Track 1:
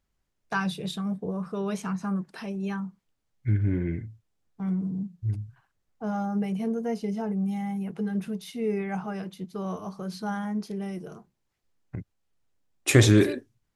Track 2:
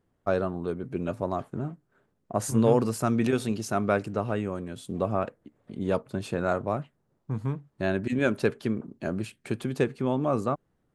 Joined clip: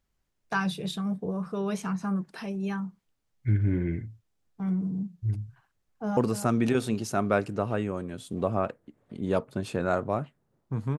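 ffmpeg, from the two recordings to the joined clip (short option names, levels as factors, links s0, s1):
-filter_complex "[0:a]apad=whole_dur=10.98,atrim=end=10.98,atrim=end=6.172[s0];[1:a]atrim=start=2.748:end=7.56[s1];[s0][s1]acrossfade=d=0.004:c1=hsin:c2=hsin,asplit=2[s2][s3];[s3]afade=t=in:st=5.66:d=0.01,afade=t=out:st=6.17:d=0.01,aecho=0:1:290|580|870:0.316228|0.0948683|0.0284605[s4];[s2][s4]amix=inputs=2:normalize=0"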